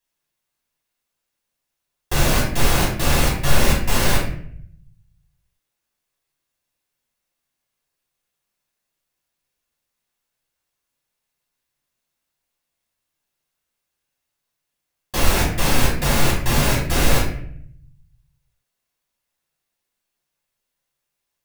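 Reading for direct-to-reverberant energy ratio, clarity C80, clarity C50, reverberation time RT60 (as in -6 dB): -6.5 dB, 8.0 dB, 4.0 dB, 0.60 s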